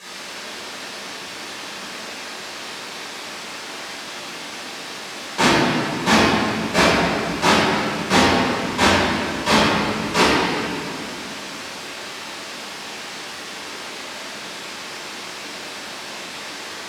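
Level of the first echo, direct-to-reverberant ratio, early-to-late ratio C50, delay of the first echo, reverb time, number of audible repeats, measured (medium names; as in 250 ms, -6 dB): no echo, -14.0 dB, -4.5 dB, no echo, 2.6 s, no echo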